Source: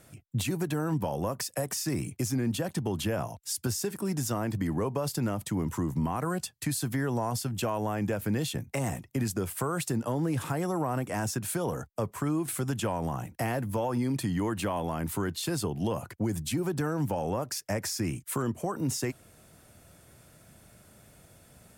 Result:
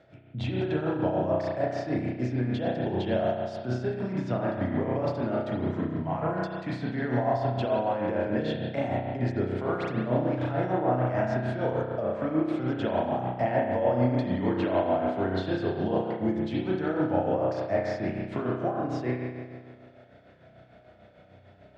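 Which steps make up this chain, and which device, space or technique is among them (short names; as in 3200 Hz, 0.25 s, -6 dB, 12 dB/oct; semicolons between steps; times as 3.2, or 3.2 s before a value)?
combo amplifier with spring reverb and tremolo (spring tank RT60 1.7 s, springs 32 ms, chirp 60 ms, DRR -4 dB; tremolo 6.7 Hz, depth 51%; speaker cabinet 89–3700 Hz, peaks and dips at 160 Hz -6 dB, 650 Hz +8 dB, 1100 Hz -7 dB, 2700 Hz -5 dB)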